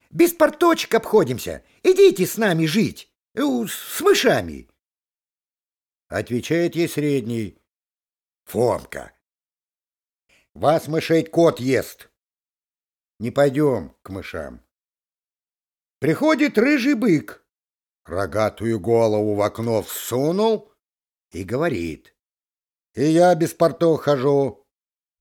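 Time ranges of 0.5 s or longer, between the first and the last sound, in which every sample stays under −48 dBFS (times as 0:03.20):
0:04.70–0:06.10
0:07.57–0:08.47
0:09.10–0:10.32
0:12.06–0:13.20
0:14.59–0:16.02
0:17.37–0:18.06
0:20.68–0:21.32
0:22.09–0:22.95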